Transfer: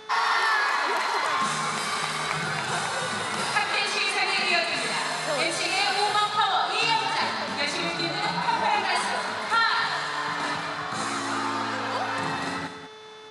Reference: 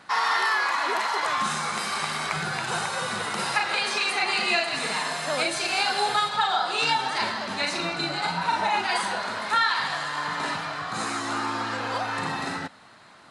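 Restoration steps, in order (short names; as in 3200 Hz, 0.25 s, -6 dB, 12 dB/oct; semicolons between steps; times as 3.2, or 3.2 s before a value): de-hum 433.3 Hz, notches 15; notch 3500 Hz, Q 30; inverse comb 0.194 s -10 dB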